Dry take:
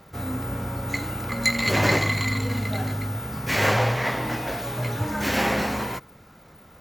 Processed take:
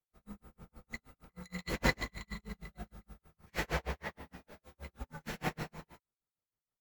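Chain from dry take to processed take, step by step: dynamic bell 230 Hz, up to +5 dB, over -40 dBFS, Q 2.7; frequency shift -52 Hz; tremolo 6.4 Hz, depth 91%; upward expansion 2.5:1, over -45 dBFS; trim -5.5 dB

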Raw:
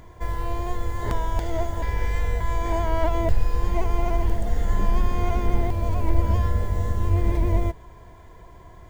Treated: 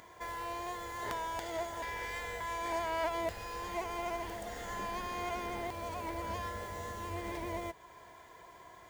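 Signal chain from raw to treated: tracing distortion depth 0.18 ms; high-pass 1 kHz 6 dB/octave; in parallel at -2.5 dB: compression, threshold -46 dBFS, peak gain reduction 18 dB; on the sum: trim -4 dB

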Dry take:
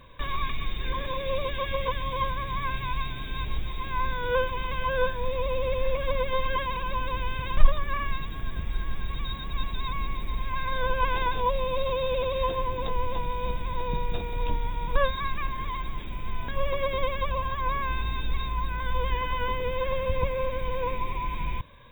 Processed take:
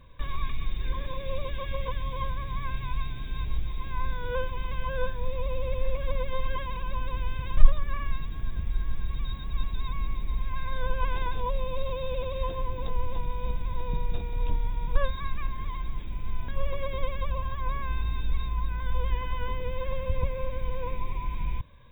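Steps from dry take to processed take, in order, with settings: bass shelf 190 Hz +9.5 dB; trim -7.5 dB

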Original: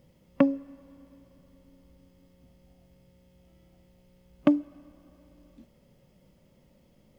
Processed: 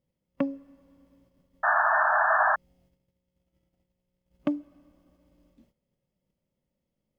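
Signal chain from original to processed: painted sound noise, 1.63–2.56 s, 600–1800 Hz -16 dBFS; gate -57 dBFS, range -14 dB; trim -6.5 dB

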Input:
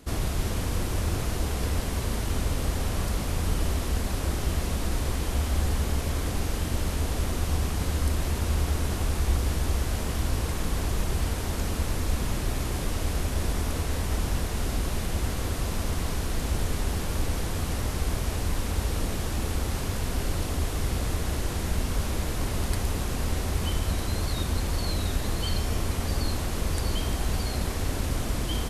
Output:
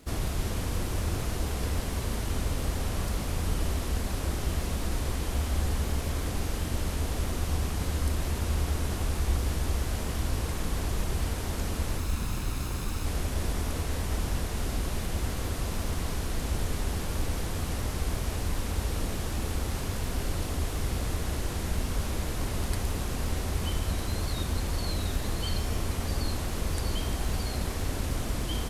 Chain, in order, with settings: 11.98–13.06 s: comb filter that takes the minimum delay 0.76 ms; crackle 170 per s -39 dBFS; trim -2.5 dB

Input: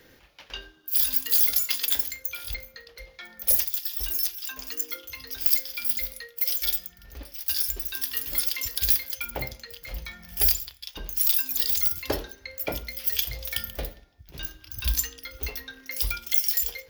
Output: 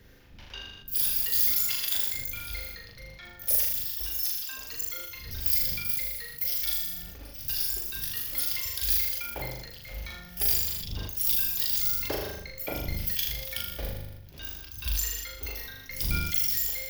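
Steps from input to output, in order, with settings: wind noise 98 Hz -42 dBFS; flutter echo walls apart 6.8 m, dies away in 0.77 s; decay stretcher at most 42 dB/s; trim -6 dB

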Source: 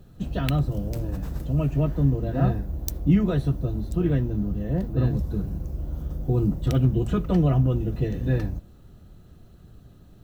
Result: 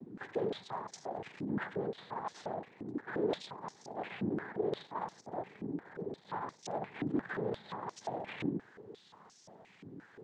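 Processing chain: in parallel at 0 dB: compression, threshold -28 dBFS, peak gain reduction 13.5 dB; on the sum: peak limiter -15.5 dBFS, peak gain reduction 11 dB; hard clipper -30 dBFS, distortion -6 dB; noise-vocoded speech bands 6; step-sequenced band-pass 5.7 Hz 290–5700 Hz; trim +9 dB

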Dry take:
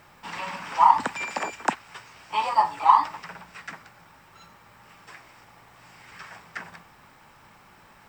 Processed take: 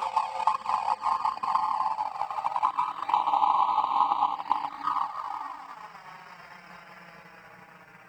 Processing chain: coarse spectral quantiser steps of 30 dB; Paulstretch 8.1×, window 0.50 s, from 2.45 s; touch-sensitive flanger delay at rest 7.5 ms, full sweep at -15.5 dBFS; transient shaper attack +9 dB, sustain -8 dB; trim -4 dB

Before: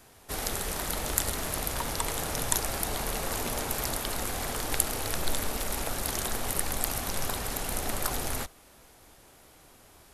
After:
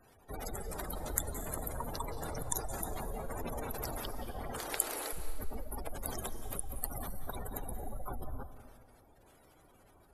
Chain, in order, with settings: 4.58–5.13 s: high-pass 300 Hz 24 dB/octave; spectral gate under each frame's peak -15 dB strong; reverberation RT60 1.4 s, pre-delay 165 ms, DRR 9.5 dB; trim -5 dB

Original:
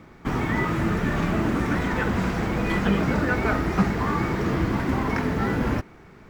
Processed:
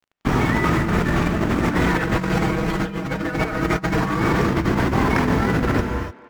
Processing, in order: crossover distortion -39.5 dBFS; 1.89–4.20 s: comb 6.3 ms, depth 74%; speakerphone echo 280 ms, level -16 dB; gated-style reverb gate 320 ms rising, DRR 7.5 dB; compressor with a negative ratio -25 dBFS, ratio -0.5; trim +5.5 dB

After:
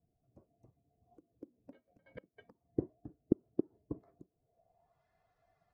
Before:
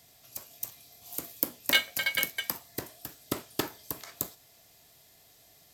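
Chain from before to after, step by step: expander on every frequency bin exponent 1.5; inverted gate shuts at -18 dBFS, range -26 dB; low-pass sweep 340 Hz -> 1.4 kHz, 4.35–5.04 s; trim +5.5 dB

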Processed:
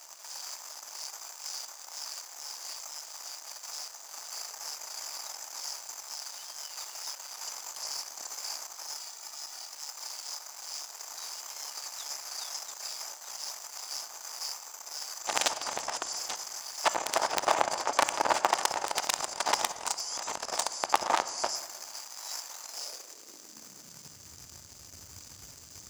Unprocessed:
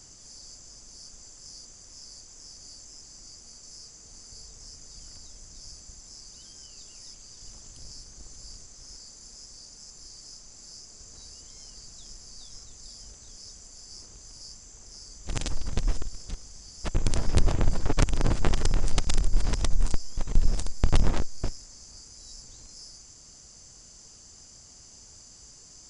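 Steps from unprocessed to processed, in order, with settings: waveshaping leveller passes 3; high-pass sweep 810 Hz -> 85 Hz, 22.61–24.37 s; 8.94–9.73 s: comb of notches 530 Hz; on a send: reverberation RT60 1.6 s, pre-delay 3 ms, DRR 12 dB; on the sum: trim -1 dB

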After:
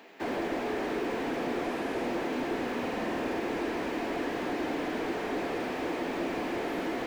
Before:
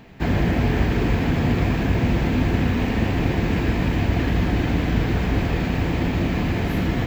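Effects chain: 1.64–2.05 s: CVSD coder 64 kbps; high-pass 320 Hz 24 dB/octave; 2.73–3.40 s: flutter echo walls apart 8.5 m, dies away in 1.2 s; peak limiter -19 dBFS, peak gain reduction 6 dB; slew-rate limiter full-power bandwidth 31 Hz; trim -2 dB

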